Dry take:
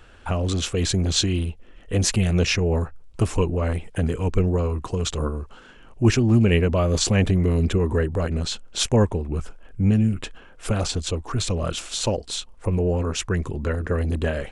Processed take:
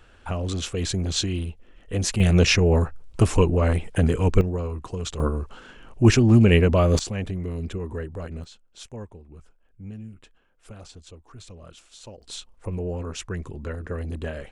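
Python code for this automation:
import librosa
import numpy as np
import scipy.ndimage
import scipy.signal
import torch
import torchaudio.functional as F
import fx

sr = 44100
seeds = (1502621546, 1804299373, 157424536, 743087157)

y = fx.gain(x, sr, db=fx.steps((0.0, -4.0), (2.2, 3.0), (4.41, -5.5), (5.2, 2.0), (6.99, -10.0), (8.44, -19.5), (12.22, -7.5)))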